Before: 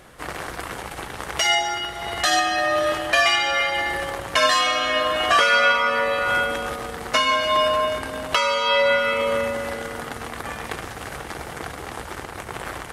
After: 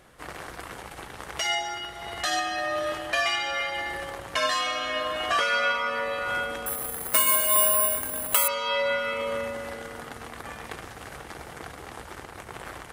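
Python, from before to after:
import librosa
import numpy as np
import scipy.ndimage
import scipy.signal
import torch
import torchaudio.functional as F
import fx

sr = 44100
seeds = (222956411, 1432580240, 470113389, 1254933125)

y = fx.resample_bad(x, sr, factor=4, down='filtered', up='zero_stuff', at=(6.66, 8.48))
y = y * librosa.db_to_amplitude(-7.5)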